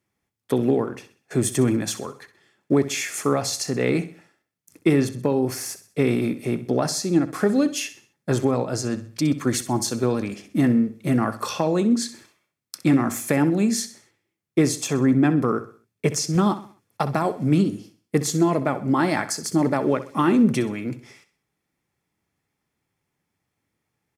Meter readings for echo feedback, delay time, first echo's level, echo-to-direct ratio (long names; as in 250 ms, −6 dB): 40%, 64 ms, −14.0 dB, −13.0 dB